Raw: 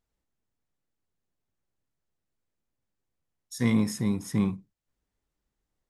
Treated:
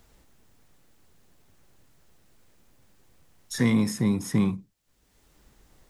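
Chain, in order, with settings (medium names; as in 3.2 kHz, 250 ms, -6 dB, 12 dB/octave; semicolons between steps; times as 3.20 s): three bands compressed up and down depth 70%; trim +3 dB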